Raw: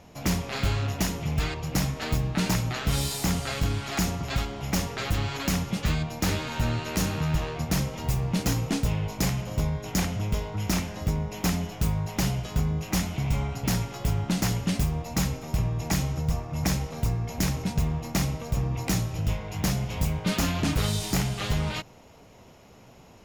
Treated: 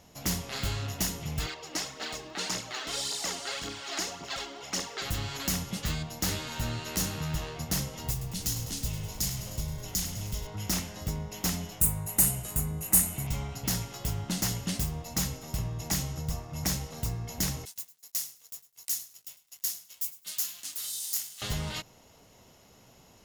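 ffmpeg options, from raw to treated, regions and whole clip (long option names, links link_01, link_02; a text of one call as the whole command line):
ffmpeg -i in.wav -filter_complex "[0:a]asettb=1/sr,asplit=3[link_01][link_02][link_03];[link_01]atrim=end=1.464[link_04];[link_02]atrim=start=1.46:end=5.02,asetpts=PTS-STARTPTS,afade=type=in:duration=0.004:curve=qsin,afade=type=out:start_time=3.556:duration=0.004:curve=qsin,acrossover=split=260 7900:gain=0.0708 1 0.0891[link_05][link_06][link_07];[link_05][link_06][link_07]amix=inputs=3:normalize=0,aphaser=in_gain=1:out_gain=1:delay=3.5:decay=0.5:speed=1.8:type=triangular[link_08];[link_03]atrim=start=5.016[link_09];[link_04][link_08]acrossfade=duration=0.004:curve1=hsin:curve2=qsin[link_10];[link_10][link_09]acrossfade=duration=0.004:curve1=qsin:curve2=hsin,asettb=1/sr,asplit=3[link_11][link_12][link_13];[link_11]atrim=end=8.114[link_14];[link_12]atrim=start=8.11:end=10.47,asetpts=PTS-STARTPTS,afade=type=in:duration=0.004:curve=qsin,afade=type=out:start_time=2.356:duration=0.004:curve=qsin,acrossover=split=150|3000[link_15][link_16][link_17];[link_16]acompressor=threshold=-36dB:ratio=6:attack=3.2:release=140:knee=2.83:detection=peak[link_18];[link_15][link_18][link_17]amix=inputs=3:normalize=0,asplit=9[link_19][link_20][link_21][link_22][link_23][link_24][link_25][link_26][link_27];[link_20]adelay=102,afreqshift=-33,volume=-11dB[link_28];[link_21]adelay=204,afreqshift=-66,volume=-14.7dB[link_29];[link_22]adelay=306,afreqshift=-99,volume=-18.5dB[link_30];[link_23]adelay=408,afreqshift=-132,volume=-22.2dB[link_31];[link_24]adelay=510,afreqshift=-165,volume=-26dB[link_32];[link_25]adelay=612,afreqshift=-198,volume=-29.7dB[link_33];[link_26]adelay=714,afreqshift=-231,volume=-33.5dB[link_34];[link_27]adelay=816,afreqshift=-264,volume=-37.2dB[link_35];[link_19][link_28][link_29][link_30][link_31][link_32][link_33][link_34][link_35]amix=inputs=9:normalize=0,atrim=end_sample=104076[link_36];[link_13]atrim=start=10.466[link_37];[link_14][link_36]acrossfade=duration=0.004:curve1=hsin:curve2=qsin[link_38];[link_38][link_37]acrossfade=duration=0.004:curve1=qsin:curve2=hsin,asettb=1/sr,asplit=3[link_39][link_40][link_41];[link_39]atrim=end=11.804[link_42];[link_40]atrim=start=11.8:end=13.27,asetpts=PTS-STARTPTS,afade=type=in:duration=0.004:curve=qsin,afade=type=out:start_time=1.466:duration=0.004:curve=qsin,highshelf=frequency=7000:width_type=q:width=3:gain=10,bandreject=frequency=3300:width=10[link_43];[link_41]atrim=start=13.266[link_44];[link_42][link_43]acrossfade=duration=0.004:curve1=hsin:curve2=qsin[link_45];[link_45][link_44]acrossfade=duration=0.004:curve1=qsin:curve2=hsin,asettb=1/sr,asplit=3[link_46][link_47][link_48];[link_46]atrim=end=17.654[link_49];[link_47]atrim=start=17.65:end=21.42,asetpts=PTS-STARTPTS,afade=type=in:duration=0.004:curve=qsin,afade=type=out:start_time=3.766:duration=0.004:curve=qsin,aderivative,aeval=exprs='sgn(val(0))*max(abs(val(0))-0.00299,0)':channel_layout=same,aecho=1:1:102|204:0.133|0.0253,atrim=end_sample=166257[link_50];[link_48]atrim=start=21.416[link_51];[link_49][link_50]acrossfade=duration=0.004:curve1=hsin:curve2=qsin[link_52];[link_52][link_51]acrossfade=duration=0.004:curve1=qsin:curve2=hsin,highshelf=frequency=3500:gain=11,bandreject=frequency=2400:width=13,volume=-7dB" out.wav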